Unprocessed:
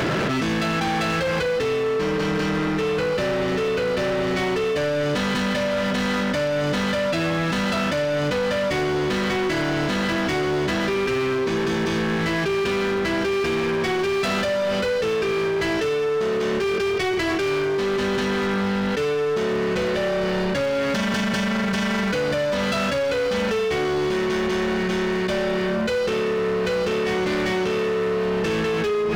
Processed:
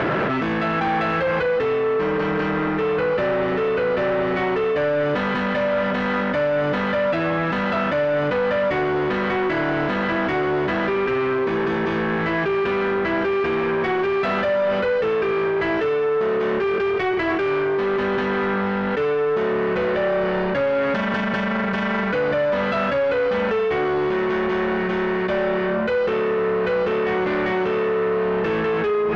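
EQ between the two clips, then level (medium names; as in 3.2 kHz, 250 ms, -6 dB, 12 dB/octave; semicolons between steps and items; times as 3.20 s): low-pass 1.8 kHz 12 dB/octave; bass shelf 330 Hz -8.5 dB; +5.0 dB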